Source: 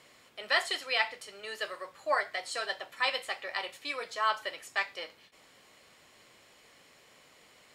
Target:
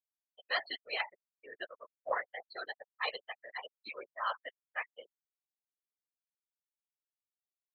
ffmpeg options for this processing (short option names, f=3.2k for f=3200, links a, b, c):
-af "afftfilt=real='re*gte(hypot(re,im),0.0562)':imag='im*gte(hypot(re,im),0.0562)':win_size=1024:overlap=0.75,afftfilt=real='hypot(re,im)*cos(2*PI*random(0))':imag='hypot(re,im)*sin(2*PI*random(1))':win_size=512:overlap=0.75,aexciter=amount=7.1:drive=8.6:freq=11k"